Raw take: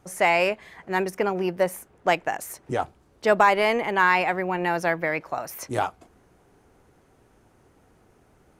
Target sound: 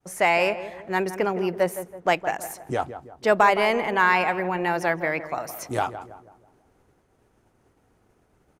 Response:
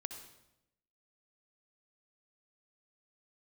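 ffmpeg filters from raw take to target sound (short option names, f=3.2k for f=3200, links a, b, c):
-filter_complex "[0:a]agate=range=-33dB:threshold=-53dB:ratio=3:detection=peak,asplit=2[a][b];[b]adelay=164,lowpass=f=1.4k:p=1,volume=-11dB,asplit=2[c][d];[d]adelay=164,lowpass=f=1.4k:p=1,volume=0.46,asplit=2[e][f];[f]adelay=164,lowpass=f=1.4k:p=1,volume=0.46,asplit=2[g][h];[h]adelay=164,lowpass=f=1.4k:p=1,volume=0.46,asplit=2[i][j];[j]adelay=164,lowpass=f=1.4k:p=1,volume=0.46[k];[a][c][e][g][i][k]amix=inputs=6:normalize=0"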